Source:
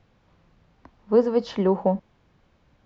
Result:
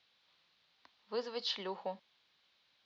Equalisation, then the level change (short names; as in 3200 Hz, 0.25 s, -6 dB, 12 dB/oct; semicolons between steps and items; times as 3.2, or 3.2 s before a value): band-pass 4000 Hz, Q 2.9; air absorption 51 m; +8.5 dB